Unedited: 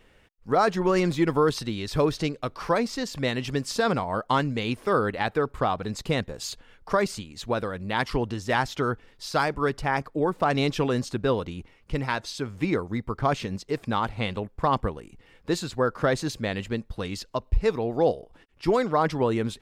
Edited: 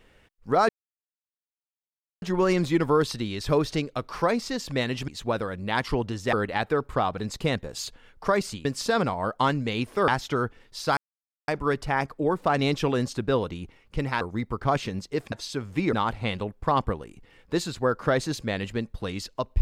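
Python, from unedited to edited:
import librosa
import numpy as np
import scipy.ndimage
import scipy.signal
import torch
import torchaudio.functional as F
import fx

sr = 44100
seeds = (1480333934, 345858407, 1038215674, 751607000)

y = fx.edit(x, sr, fx.insert_silence(at_s=0.69, length_s=1.53),
    fx.swap(start_s=3.55, length_s=1.43, other_s=7.3, other_length_s=1.25),
    fx.insert_silence(at_s=9.44, length_s=0.51),
    fx.move(start_s=12.17, length_s=0.61, to_s=13.89), tone=tone)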